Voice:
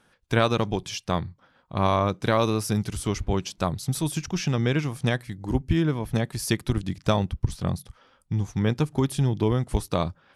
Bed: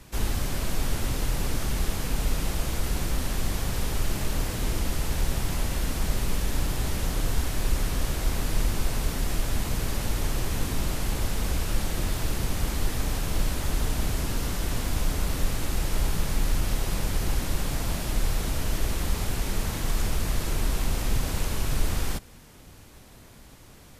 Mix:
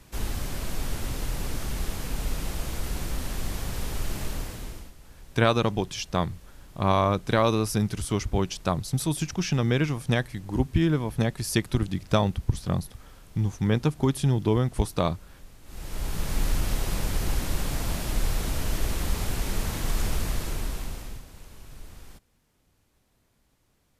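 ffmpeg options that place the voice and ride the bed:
-filter_complex "[0:a]adelay=5050,volume=1[s0];[1:a]volume=8.41,afade=t=out:st=4.25:d=0.68:silence=0.112202,afade=t=in:st=15.64:d=0.77:silence=0.0794328,afade=t=out:st=20.16:d=1.09:silence=0.11885[s1];[s0][s1]amix=inputs=2:normalize=0"

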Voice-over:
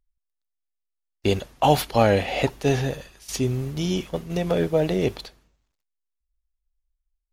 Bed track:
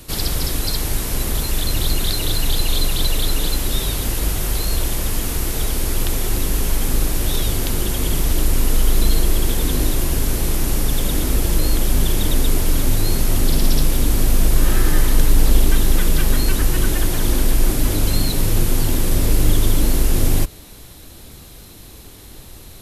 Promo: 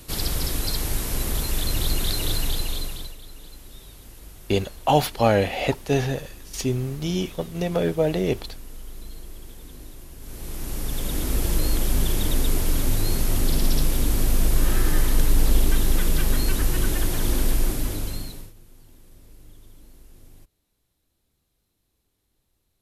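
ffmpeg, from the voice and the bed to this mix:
-filter_complex "[0:a]adelay=3250,volume=0.944[s0];[1:a]volume=5.01,afade=t=out:st=2.32:d=0.84:silence=0.112202,afade=t=in:st=10.18:d=1.28:silence=0.11885,afade=t=out:st=17.49:d=1.04:silence=0.0375837[s1];[s0][s1]amix=inputs=2:normalize=0"

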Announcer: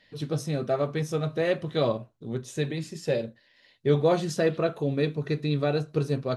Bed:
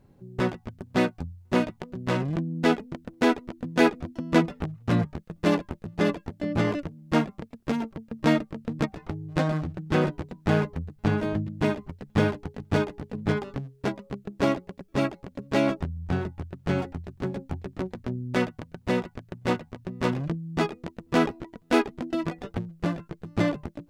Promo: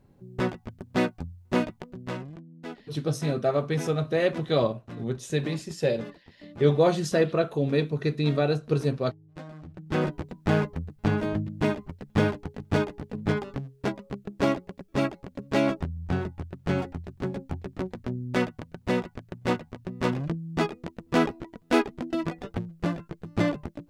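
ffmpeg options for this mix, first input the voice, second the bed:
-filter_complex "[0:a]adelay=2750,volume=1.19[s0];[1:a]volume=5.96,afade=t=out:st=1.69:d=0.7:silence=0.158489,afade=t=in:st=9.57:d=0.59:silence=0.141254[s1];[s0][s1]amix=inputs=2:normalize=0"

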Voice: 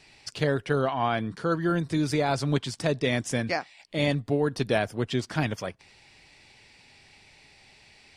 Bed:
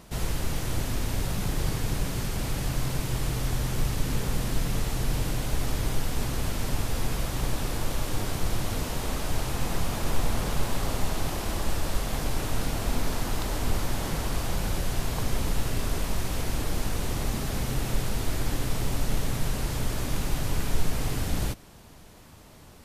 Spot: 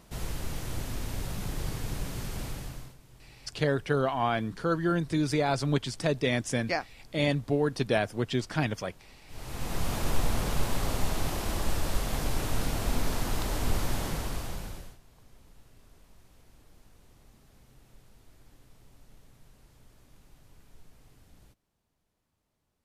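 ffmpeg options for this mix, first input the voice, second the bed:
-filter_complex "[0:a]adelay=3200,volume=0.841[s0];[1:a]volume=8.91,afade=t=out:st=2.41:d=0.55:silence=0.0944061,afade=t=in:st=9.27:d=0.64:silence=0.0562341,afade=t=out:st=13.95:d=1.03:silence=0.0398107[s1];[s0][s1]amix=inputs=2:normalize=0"

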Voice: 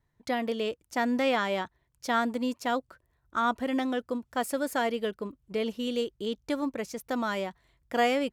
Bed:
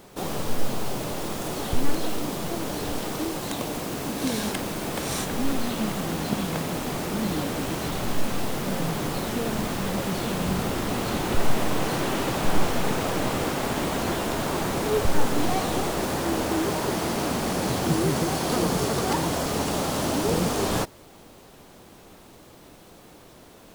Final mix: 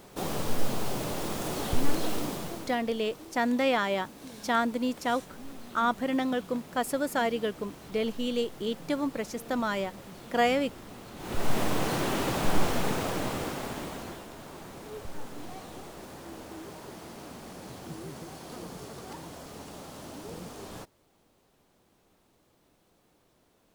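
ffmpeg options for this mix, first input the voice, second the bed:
-filter_complex "[0:a]adelay=2400,volume=1.06[s0];[1:a]volume=4.47,afade=t=out:st=2.18:d=0.6:silence=0.158489,afade=t=in:st=11.16:d=0.42:silence=0.16788,afade=t=out:st=12.72:d=1.55:silence=0.177828[s1];[s0][s1]amix=inputs=2:normalize=0"

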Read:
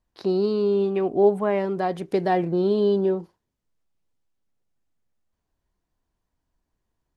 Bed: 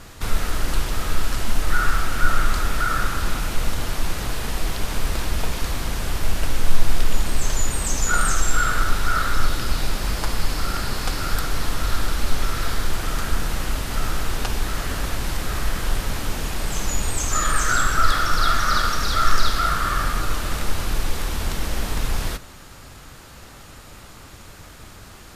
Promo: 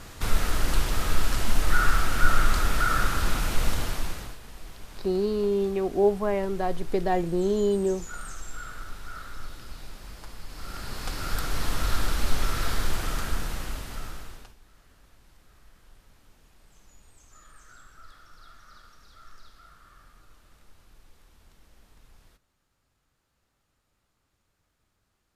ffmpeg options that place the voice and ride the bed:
-filter_complex "[0:a]adelay=4800,volume=0.668[s0];[1:a]volume=4.73,afade=t=out:st=3.72:d=0.66:silence=0.141254,afade=t=in:st=10.47:d=1.28:silence=0.16788,afade=t=out:st=12.88:d=1.67:silence=0.0354813[s1];[s0][s1]amix=inputs=2:normalize=0"

